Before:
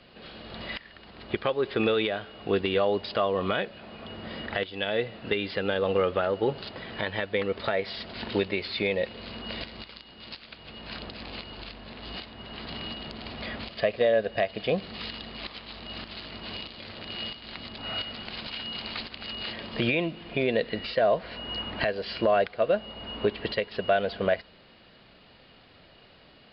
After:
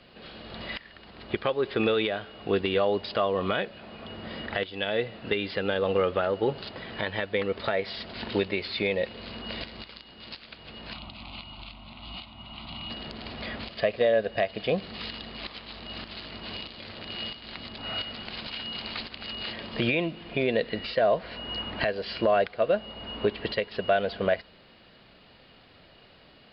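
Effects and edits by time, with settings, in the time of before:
10.93–12.9 fixed phaser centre 1700 Hz, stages 6

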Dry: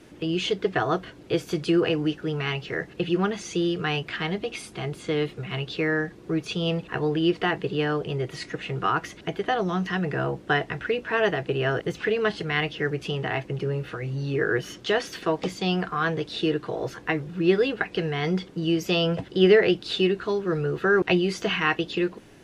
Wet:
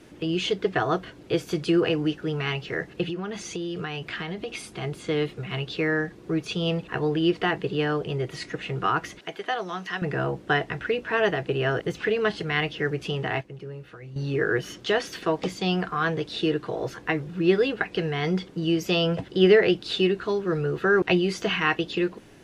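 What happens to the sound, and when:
3.09–4.82 compressor 10:1, threshold -27 dBFS
9.19–10.02 HPF 780 Hz 6 dB/oct
13.41–14.16 gain -10.5 dB

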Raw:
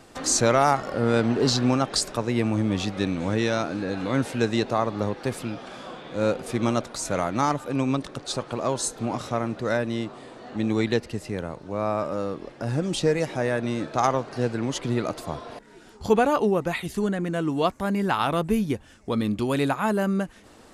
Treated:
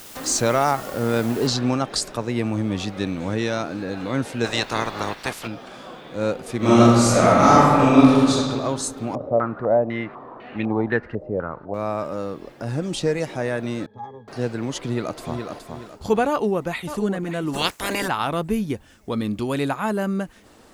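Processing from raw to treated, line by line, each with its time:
1.47 noise floor step -42 dB -70 dB
4.44–5.46 spectral limiter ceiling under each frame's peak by 20 dB
6.57–8.3 reverb throw, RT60 2 s, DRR -11 dB
9.15–11.74 stepped low-pass 4 Hz 570–2500 Hz
13.86–14.28 octave resonator G#, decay 0.18 s
14.78–15.45 echo throw 0.42 s, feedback 35%, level -5.5 dB
16.29–16.99 echo throw 0.58 s, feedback 10%, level -10.5 dB
17.53–18.07 spectral limiter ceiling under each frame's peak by 28 dB

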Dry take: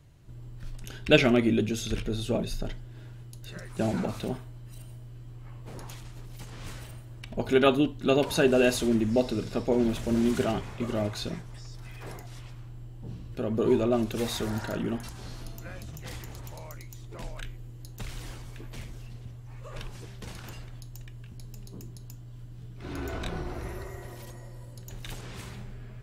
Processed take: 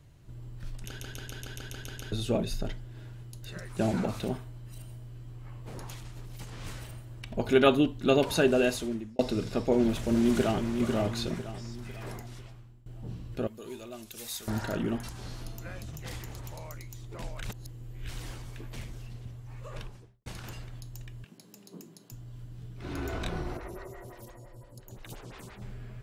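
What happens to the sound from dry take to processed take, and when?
0.86 stutter in place 0.14 s, 9 plays
8.07–9.19 fade out equal-power
9.78–10.74 echo throw 0.5 s, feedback 45%, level -7.5 dB
12.2–12.86 fade out, to -19.5 dB
13.47–14.48 pre-emphasis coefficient 0.9
17.43–18.08 reverse
19.65–20.26 studio fade out
21.24–22.12 elliptic high-pass 160 Hz
23.57–25.62 photocell phaser 5.8 Hz

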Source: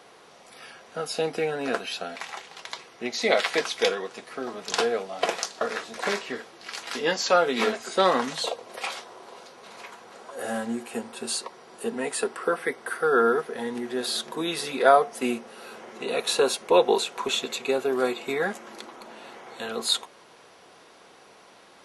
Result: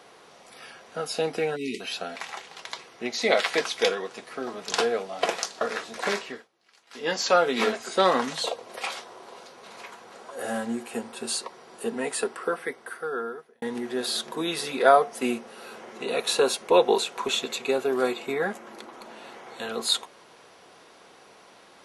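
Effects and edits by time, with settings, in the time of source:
1.56–1.8 spectral delete 450–1900 Hz
6.2–7.17 dip -23.5 dB, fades 0.28 s
12.13–13.62 fade out
18.26–18.93 bell 5700 Hz -5 dB 2.4 oct

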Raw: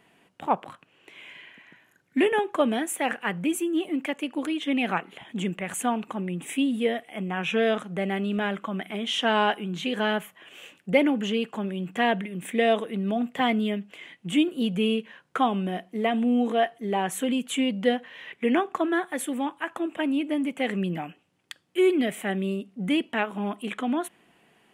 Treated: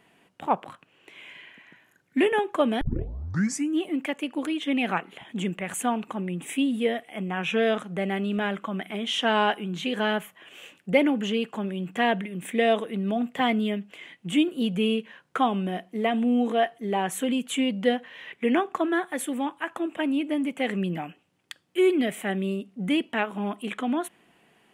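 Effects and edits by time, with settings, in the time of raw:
2.81 tape start 0.96 s

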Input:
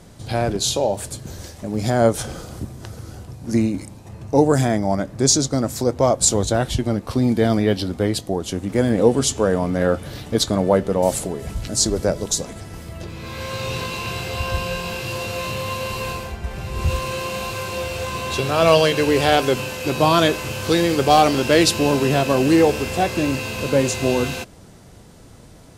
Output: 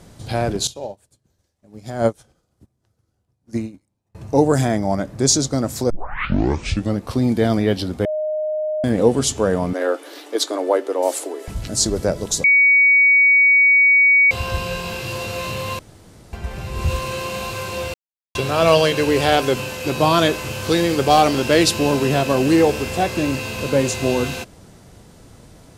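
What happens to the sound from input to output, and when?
0.67–4.15 upward expander 2.5:1, over -35 dBFS
5.9 tape start 1.07 s
8.05–8.84 bleep 616 Hz -19.5 dBFS
9.73–11.48 Chebyshev high-pass 280 Hz, order 6
12.44–14.31 bleep 2250 Hz -9.5 dBFS
15.79–16.33 room tone
17.94–18.35 mute

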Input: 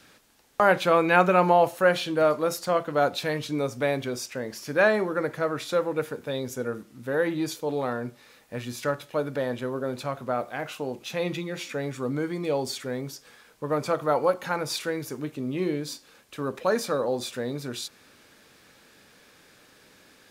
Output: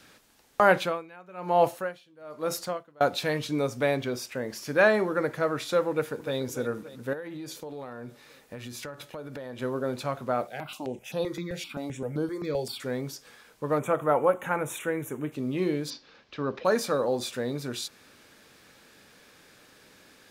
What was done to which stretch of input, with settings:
0.75–3.01 dB-linear tremolo 1.1 Hz, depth 30 dB
3.94–4.48 bell 13000 Hz -> 4100 Hz -6 dB 0.76 oct
5.9–6.37 echo throw 0.29 s, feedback 70%, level -14 dB
7.13–9.6 compressor 10:1, threshold -35 dBFS
10.47–12.8 step phaser 7.7 Hz 290–7200 Hz
13.79–15.32 Butterworth band-stop 4700 Hz, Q 1.2
15.9–16.65 steep low-pass 5400 Hz

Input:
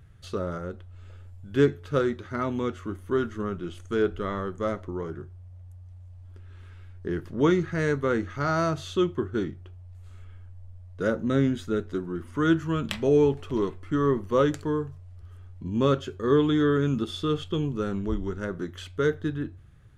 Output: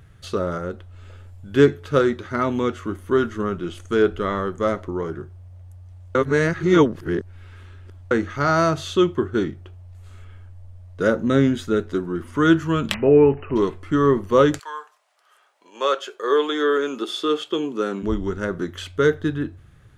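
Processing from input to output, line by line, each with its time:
6.15–8.11 reverse
12.94–13.56 brick-wall FIR low-pass 3000 Hz
14.58–18.02 HPF 890 Hz -> 220 Hz 24 dB/oct
whole clip: low shelf 170 Hz -5.5 dB; gain +7.5 dB

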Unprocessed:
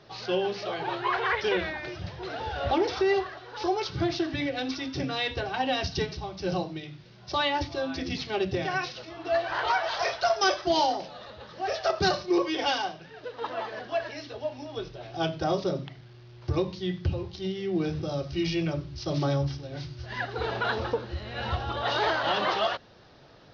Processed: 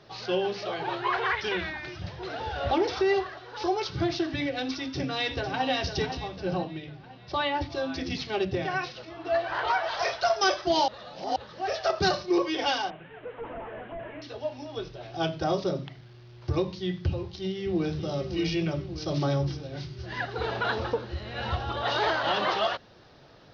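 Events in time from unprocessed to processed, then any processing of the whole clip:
1.31–2.02 bell 520 Hz -9.5 dB
4.7–5.67 echo throw 0.5 s, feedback 50%, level -8.5 dB
6.37–7.7 air absorption 170 m
8.45–9.98 high shelf 5300 Hz -8.5 dB
10.88–11.36 reverse
12.9–14.22 delta modulation 16 kbps, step -47.5 dBFS
17.08–17.97 echo throw 0.58 s, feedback 65%, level -9 dB

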